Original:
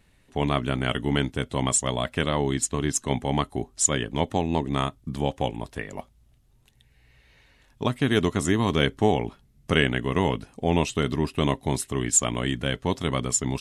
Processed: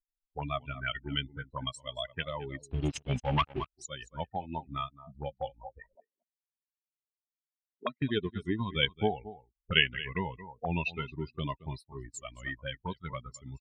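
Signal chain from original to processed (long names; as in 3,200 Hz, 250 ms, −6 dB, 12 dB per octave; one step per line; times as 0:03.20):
spectral dynamics exaggerated over time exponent 3
single-tap delay 223 ms −18.5 dB
0:02.56–0:03.15: gain on a spectral selection 720–2,100 Hz −30 dB
0:05.95–0:08.02: Butterworth high-pass 200 Hz 36 dB per octave
in parallel at +1 dB: downward compressor 6 to 1, threshold −36 dBFS, peak gain reduction 17 dB
0:02.71–0:03.70: on the sum: leveller curve on the samples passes 3
envelope-controlled low-pass 290–2,800 Hz up, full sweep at −28.5 dBFS
level −6 dB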